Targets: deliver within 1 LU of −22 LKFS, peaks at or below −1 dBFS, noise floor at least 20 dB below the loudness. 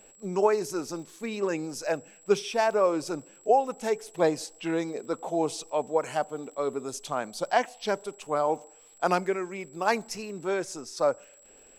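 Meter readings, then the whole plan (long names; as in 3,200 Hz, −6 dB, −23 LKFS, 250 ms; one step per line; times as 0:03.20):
crackle rate 53 per second; interfering tone 7,700 Hz; level of the tone −54 dBFS; integrated loudness −29.0 LKFS; sample peak −9.0 dBFS; target loudness −22.0 LKFS
→ click removal
notch filter 7,700 Hz, Q 30
level +7 dB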